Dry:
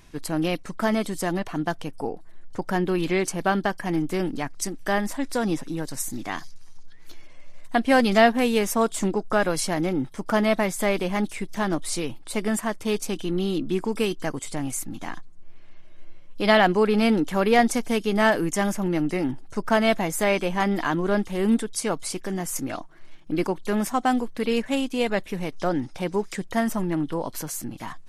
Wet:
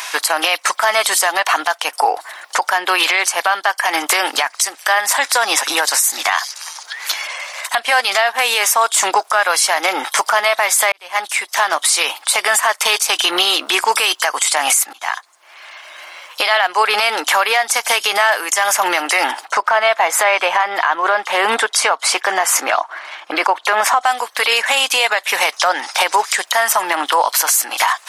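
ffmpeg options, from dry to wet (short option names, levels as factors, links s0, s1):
-filter_complex "[0:a]asettb=1/sr,asplit=3[s0][s1][s2];[s0]atrim=end=19.454[s3];[s1]atrim=start=19.45:end=24.01,asetpts=PTS-STARTPTS,afade=t=in:d=0.004:c=qsin,afade=t=out:st=4.556:d=0.004:c=qsin,lowpass=f=1600:p=1[s4];[s2]atrim=start=24.006[s5];[s3][s4]acrossfade=d=0.004:c1=hsin:c2=qsin[s6];[s6][s5]acrossfade=d=0.004:c1=qsin:c2=hsin,asplit=3[s7][s8][s9];[s7]atrim=end=10.92,asetpts=PTS-STARTPTS,afade=t=out:st=10.916:d=0.004:c=hsin[s10];[s8]atrim=start=10.92:end=14.93,asetpts=PTS-STARTPTS,afade=t=in:d=2.04,afade=t=out:st=4.006:d=0.004:c=hsin:silence=0.0707946[s11];[s9]atrim=start=14.93,asetpts=PTS-STARTPTS,afade=t=in:d=1.55:silence=0.0707946[s12];[s10][s11][s12]concat=n=3:v=0:a=1,highpass=f=790:w=0.5412,highpass=f=790:w=1.3066,acompressor=threshold=0.0112:ratio=8,alimiter=level_in=56.2:limit=0.891:release=50:level=0:latency=1,volume=0.708"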